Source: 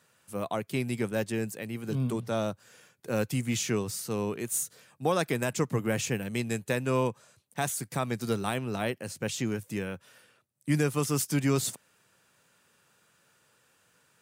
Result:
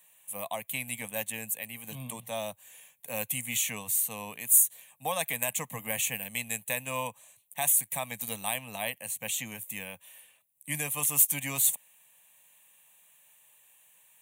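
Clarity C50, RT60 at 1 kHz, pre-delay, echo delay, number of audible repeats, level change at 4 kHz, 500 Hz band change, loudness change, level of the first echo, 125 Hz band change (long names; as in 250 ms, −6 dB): no reverb audible, no reverb audible, no reverb audible, no echo audible, no echo audible, +0.5 dB, −8.5 dB, +2.0 dB, no echo audible, −12.5 dB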